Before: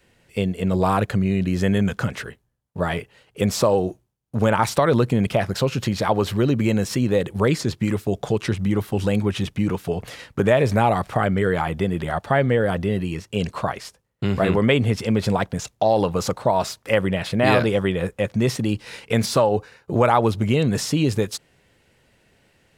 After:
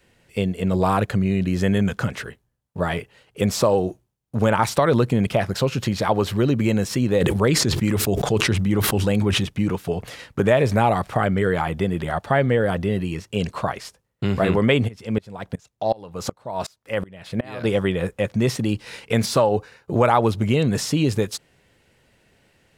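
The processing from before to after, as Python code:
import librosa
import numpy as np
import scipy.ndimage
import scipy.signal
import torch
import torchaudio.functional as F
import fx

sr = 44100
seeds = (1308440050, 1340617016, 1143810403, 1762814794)

y = fx.sustainer(x, sr, db_per_s=28.0, at=(7.2, 9.4), fade=0.02)
y = fx.tremolo_decay(y, sr, direction='swelling', hz=2.7, depth_db=27, at=(14.87, 17.63), fade=0.02)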